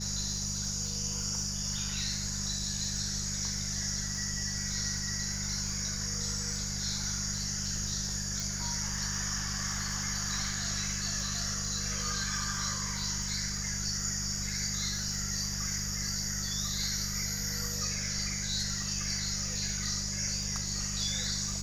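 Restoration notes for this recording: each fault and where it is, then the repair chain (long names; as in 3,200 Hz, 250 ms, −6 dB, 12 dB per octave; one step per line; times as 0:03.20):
surface crackle 55 per second −39 dBFS
mains hum 50 Hz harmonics 4 −39 dBFS
0:08.40: click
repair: click removal
hum removal 50 Hz, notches 4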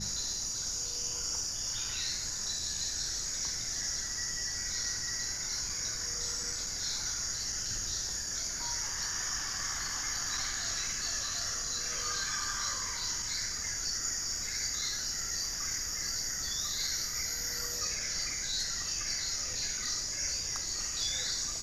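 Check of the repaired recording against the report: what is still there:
none of them is left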